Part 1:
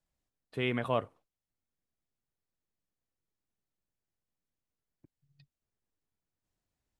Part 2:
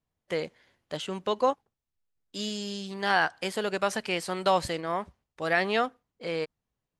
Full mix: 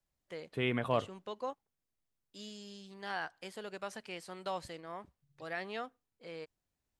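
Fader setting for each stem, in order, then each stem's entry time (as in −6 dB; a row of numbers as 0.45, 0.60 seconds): −1.0, −14.5 decibels; 0.00, 0.00 seconds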